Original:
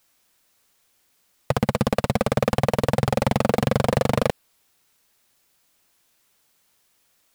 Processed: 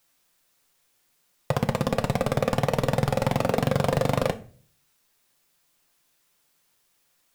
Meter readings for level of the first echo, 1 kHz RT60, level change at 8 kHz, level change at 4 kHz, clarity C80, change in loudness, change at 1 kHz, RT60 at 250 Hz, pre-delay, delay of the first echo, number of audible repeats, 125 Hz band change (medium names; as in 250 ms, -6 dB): no echo, 0.35 s, -3.0 dB, -3.0 dB, 22.0 dB, -3.0 dB, -3.0 dB, 0.55 s, 6 ms, no echo, no echo, -2.0 dB